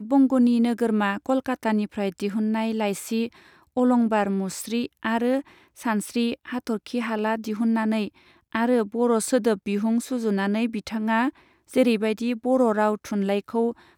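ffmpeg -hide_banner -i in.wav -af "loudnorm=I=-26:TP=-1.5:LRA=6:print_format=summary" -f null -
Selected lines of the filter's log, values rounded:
Input Integrated:    -24.2 LUFS
Input True Peak:      -8.0 dBTP
Input LRA:             2.2 LU
Input Threshold:     -34.4 LUFS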